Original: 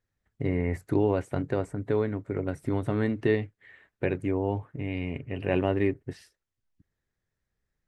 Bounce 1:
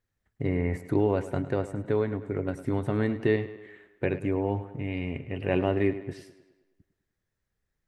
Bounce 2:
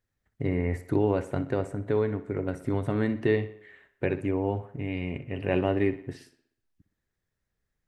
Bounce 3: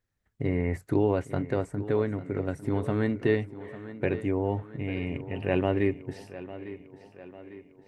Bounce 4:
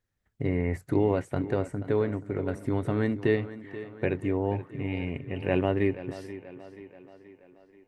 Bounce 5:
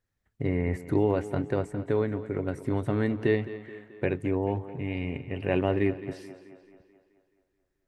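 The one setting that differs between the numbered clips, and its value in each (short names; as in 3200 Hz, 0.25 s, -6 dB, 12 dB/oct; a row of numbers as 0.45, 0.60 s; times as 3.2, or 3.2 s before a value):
tape echo, time: 103, 60, 850, 481, 216 ms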